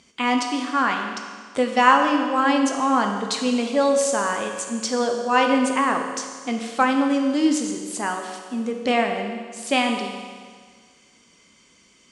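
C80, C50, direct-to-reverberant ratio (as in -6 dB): 6.0 dB, 5.0 dB, 3.0 dB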